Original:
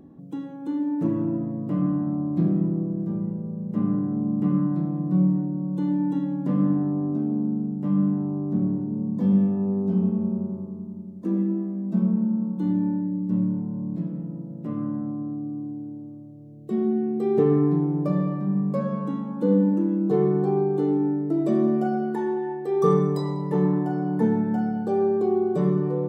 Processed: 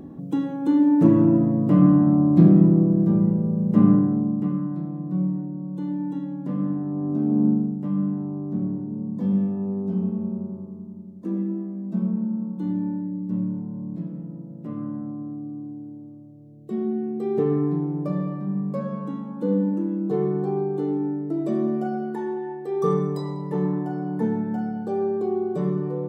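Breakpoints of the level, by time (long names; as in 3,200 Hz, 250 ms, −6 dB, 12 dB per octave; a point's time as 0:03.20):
0:03.89 +8.5 dB
0:04.58 −4 dB
0:06.84 −4 dB
0:07.48 +7 dB
0:07.89 −2.5 dB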